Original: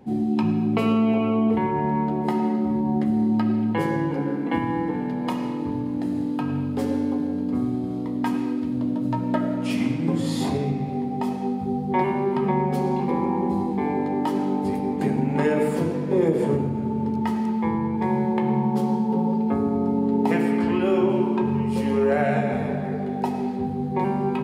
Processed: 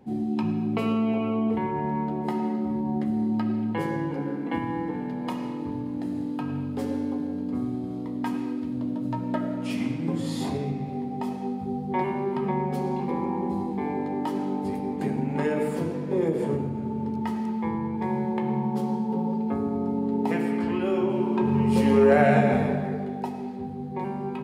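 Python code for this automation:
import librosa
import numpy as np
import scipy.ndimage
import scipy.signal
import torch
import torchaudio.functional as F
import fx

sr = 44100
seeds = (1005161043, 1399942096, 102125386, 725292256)

y = fx.gain(x, sr, db=fx.line((21.14, -4.5), (21.74, 3.0), (22.53, 3.0), (23.36, -7.5)))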